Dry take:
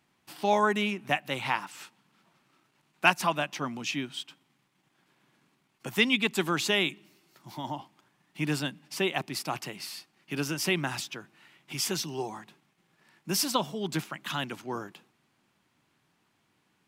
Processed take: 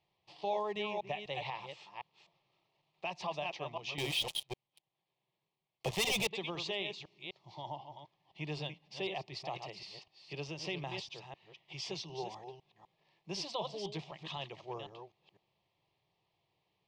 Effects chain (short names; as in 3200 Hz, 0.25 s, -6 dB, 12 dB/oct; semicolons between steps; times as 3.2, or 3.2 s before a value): reverse delay 0.252 s, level -8 dB; LPF 4500 Hz 24 dB/oct; 3.98–6.27 sample leveller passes 5; limiter -19 dBFS, peak gain reduction 11 dB; fixed phaser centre 610 Hz, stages 4; gain -4 dB